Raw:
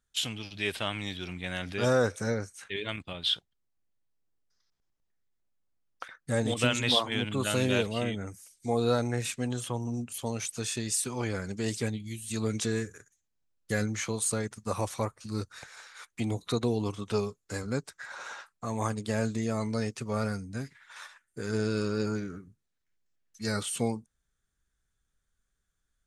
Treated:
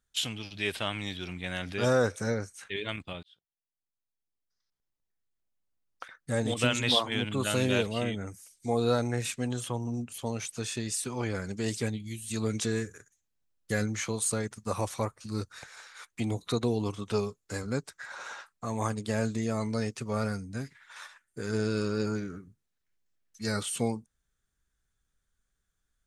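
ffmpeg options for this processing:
-filter_complex "[0:a]asettb=1/sr,asplit=3[a][b][c];[a]atrim=end=9.764[d];[b]atrim=start=9.76:end=11.35,asetpts=PTS-STARTPTS,afade=t=in:d=0.004:c=qsin,afade=t=out:st=1.586:d=0.004:c=qsin,highshelf=f=5.4k:g=-5[e];[c]atrim=start=11.346[f];[d][e]acrossfade=d=0.004:c1=hsin:c2=qsin[g];[g][f]acrossfade=d=0.004:c1=qsin:c2=hsin,asplit=2[h][i];[h]atrim=end=3.23,asetpts=PTS-STARTPTS,afade=t=out:st=3.226:d=0.004:c=hsin[j];[i]atrim=start=3.23,asetpts=PTS-STARTPTS,afade=t=in:d=3.53[k];[j][k]concat=n=2:v=0:a=1"

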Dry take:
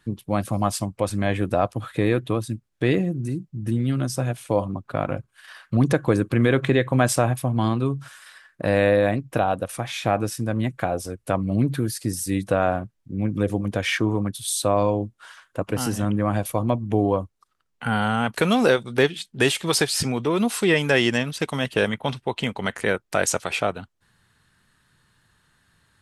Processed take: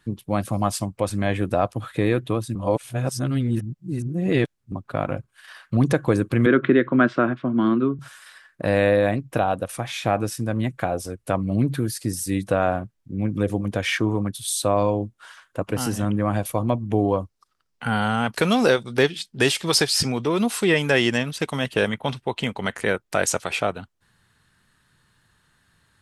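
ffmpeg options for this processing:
-filter_complex "[0:a]asettb=1/sr,asplit=3[a][b][c];[a]atrim=end=6.464[d];[b]atrim=start=6.46:end=7.99,asetpts=PTS-STARTPTS,afade=t=in:d=0.004:c=qsin,afade=t=out:st=1.526:d=0.004:c=qsin,highpass=f=160:w=0.5412,highpass=f=160:w=1.3066,equalizer=f=240:t=q:w=4:g=6,equalizer=f=350:t=q:w=4:g=8,equalizer=f=490:t=q:w=4:g=-3,equalizer=f=800:t=q:w=4:g=-10,equalizer=f=1.4k:t=q:w=4:g=9,equalizer=f=2.5k:t=q:w=4:g=-5,lowpass=f=3.1k:w=0.5412,lowpass=f=3.1k:w=1.3066[e];[c]atrim=start=7.986[f];[d][e]acrossfade=d=0.004:c1=hsin:c2=qsin[g];[g][f]acrossfade=d=0.004:c1=qsin:c2=hsin,asettb=1/sr,asplit=3[h][i][j];[h]atrim=end=17.084[k];[i]atrim=start=17.08:end=20.46,asetpts=PTS-STARTPTS,afade=t=in:d=0.004:c=qsin,afade=t=out:st=3.376:d=0.004:c=qsin,equalizer=f=5.1k:w=2.9:g=6[l];[j]atrim=start=20.456[m];[k][l]acrossfade=d=0.004:c1=hsin:c2=qsin[n];[n][m]acrossfade=d=0.004:c1=qsin:c2=hsin,asplit=3[o][p][q];[o]atrim=end=2.552[r];[p]atrim=start=2.548:end=4.722,asetpts=PTS-STARTPTS,areverse[s];[q]atrim=start=4.718[t];[r][s]acrossfade=d=0.004:c1=hsin:c2=hsin[u];[u][t]acrossfade=d=0.004:c1=hsin:c2=hsin"

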